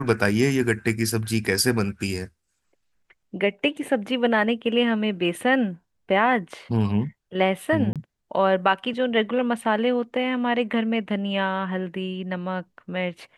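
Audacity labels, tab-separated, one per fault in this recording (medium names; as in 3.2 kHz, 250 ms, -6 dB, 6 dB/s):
7.930000	7.960000	dropout 27 ms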